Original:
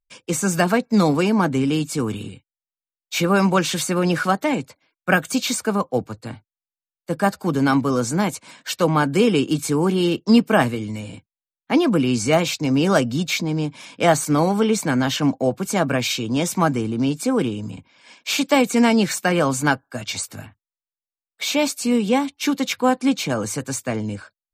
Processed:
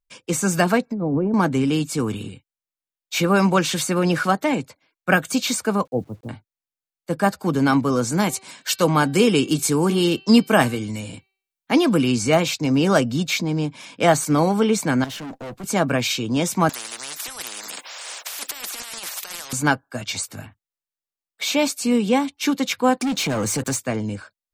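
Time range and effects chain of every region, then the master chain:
0.87–1.34 treble ducked by the level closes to 540 Hz, closed at -15 dBFS + high shelf 5900 Hz -9.5 dB + negative-ratio compressor -22 dBFS
5.85–6.29 Bessel low-pass 540 Hz, order 6 + requantised 10-bit, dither none
8.12–12.12 high shelf 3700 Hz +7 dB + de-hum 385 Hz, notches 13
15.04–15.64 G.711 law mismatch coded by A + tube stage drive 31 dB, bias 0.3
16.69–19.53 HPF 780 Hz 24 dB/oct + negative-ratio compressor -33 dBFS + spectral compressor 10:1
22.98–23.77 sample leveller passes 3 + compressor 4:1, threshold -22 dBFS
whole clip: dry

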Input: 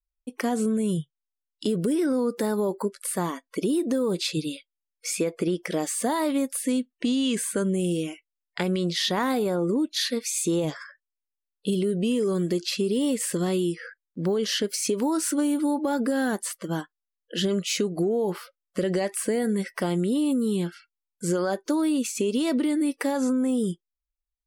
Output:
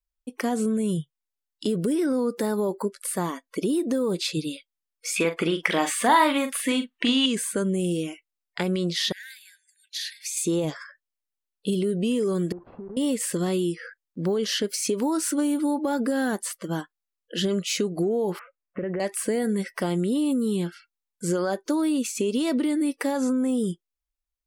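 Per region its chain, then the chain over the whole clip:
5.16–7.26 band shelf 1700 Hz +11.5 dB 2.5 oct + doubler 42 ms -9 dB
9.12–10.37 compressor 10:1, threshold -27 dBFS + brick-wall FIR high-pass 1500 Hz
12.52–12.97 block floating point 3-bit + LPF 1000 Hz 24 dB/oct + compressor 8:1, threshold -35 dBFS
18.39–19 steep low-pass 2600 Hz 72 dB/oct + compressor 3:1, threshold -26 dBFS
whole clip: dry

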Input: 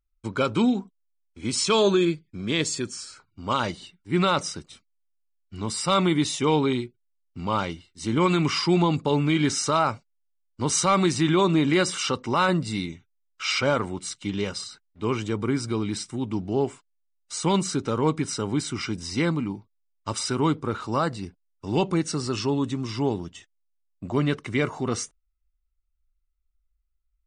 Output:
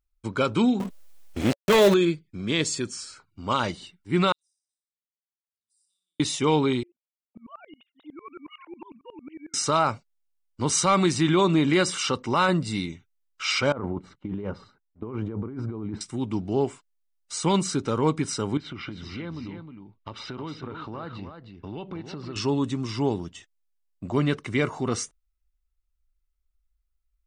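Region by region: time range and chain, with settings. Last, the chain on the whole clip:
0.8–1.94 switching dead time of 0.25 ms + bell 560 Hz +10 dB 0.41 oct + fast leveller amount 50%
4.32–6.2 inverse Chebyshev high-pass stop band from 2000 Hz, stop band 80 dB + air absorption 370 m + flutter echo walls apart 10.1 m, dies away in 0.65 s
6.83–9.54 sine-wave speech + compressor 3:1, threshold -39 dBFS + dB-ramp tremolo swelling 11 Hz, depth 24 dB
13.72–16.01 gate -42 dBFS, range -9 dB + LPF 1000 Hz + negative-ratio compressor -32 dBFS
18.57–22.36 Chebyshev low-pass 3500 Hz, order 3 + compressor 5:1, threshold -33 dBFS + echo 0.312 s -7.5 dB
whole clip: dry

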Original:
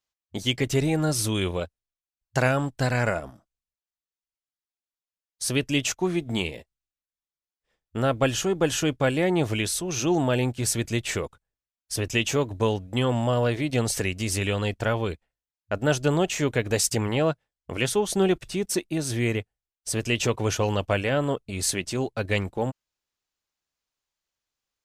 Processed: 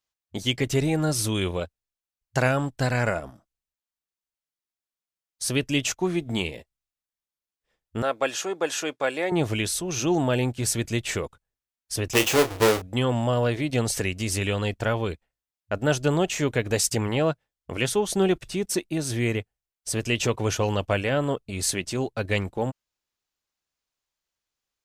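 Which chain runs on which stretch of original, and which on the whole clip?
8.02–9.32 HPF 460 Hz + high shelf 11000 Hz -7.5 dB + notch 3000 Hz, Q 11
12.13–12.82 half-waves squared off + resonant low shelf 280 Hz -6.5 dB, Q 1.5 + doubler 32 ms -9.5 dB
whole clip: dry

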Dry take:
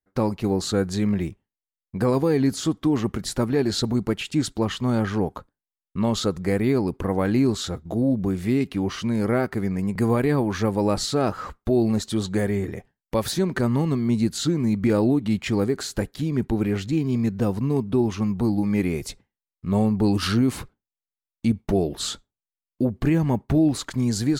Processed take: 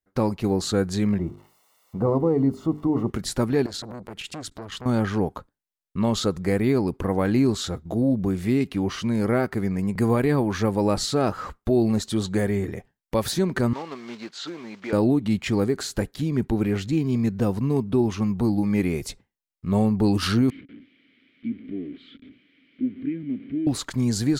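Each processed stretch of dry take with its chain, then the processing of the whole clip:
1.18–3.1 switching spikes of -25 dBFS + polynomial smoothing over 65 samples + notches 50/100/150/200/250/300/350/400/450 Hz
3.66–4.86 compressor 5:1, threshold -28 dBFS + core saturation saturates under 970 Hz
13.73–14.93 block floating point 5-bit + HPF 620 Hz + air absorption 170 m
20.5–23.67 zero-crossing step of -25 dBFS + vowel filter i + air absorption 420 m
whole clip: dry

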